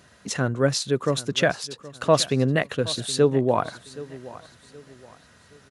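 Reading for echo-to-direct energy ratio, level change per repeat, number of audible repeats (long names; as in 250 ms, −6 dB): −17.5 dB, −9.0 dB, 2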